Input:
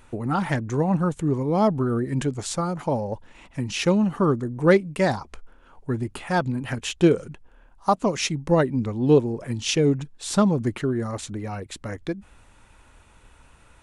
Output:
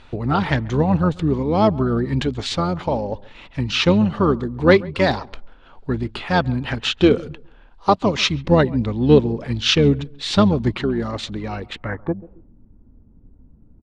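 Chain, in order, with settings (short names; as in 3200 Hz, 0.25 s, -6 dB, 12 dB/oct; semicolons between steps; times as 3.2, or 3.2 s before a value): harmoniser -12 st -9 dB; darkening echo 0.137 s, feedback 27%, low-pass 1500 Hz, level -21.5 dB; low-pass sweep 3900 Hz -> 240 Hz, 11.64–12.52; gain +3.5 dB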